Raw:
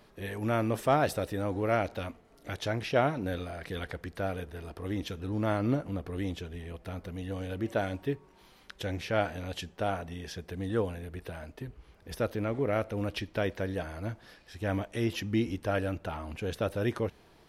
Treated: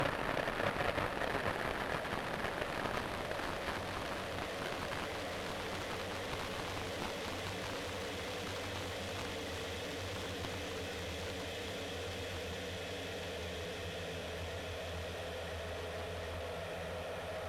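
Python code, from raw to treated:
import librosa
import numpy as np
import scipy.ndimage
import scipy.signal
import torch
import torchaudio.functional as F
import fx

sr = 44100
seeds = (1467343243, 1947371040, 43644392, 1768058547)

y = fx.paulstretch(x, sr, seeds[0], factor=23.0, window_s=1.0, from_s=5.94)
y = fx.low_shelf_res(y, sr, hz=440.0, db=-9.0, q=3.0)
y = fx.cheby_harmonics(y, sr, harmonics=(7,), levels_db=(-8,), full_scale_db=-25.0)
y = y * 10.0 ** (1.0 / 20.0)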